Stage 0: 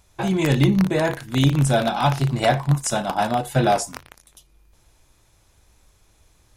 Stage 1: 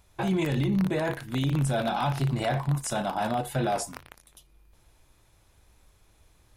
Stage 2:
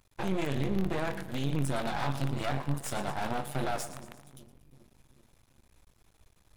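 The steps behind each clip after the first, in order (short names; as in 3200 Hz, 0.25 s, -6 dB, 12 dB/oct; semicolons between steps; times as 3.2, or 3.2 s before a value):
limiter -16 dBFS, peak gain reduction 10.5 dB; bell 6400 Hz -5 dB 0.88 oct; gain -2.5 dB
split-band echo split 350 Hz, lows 0.389 s, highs 0.114 s, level -14 dB; half-wave rectifier; gain -1 dB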